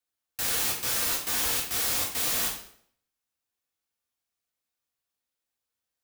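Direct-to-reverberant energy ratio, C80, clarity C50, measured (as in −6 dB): −2.5 dB, 9.5 dB, 5.5 dB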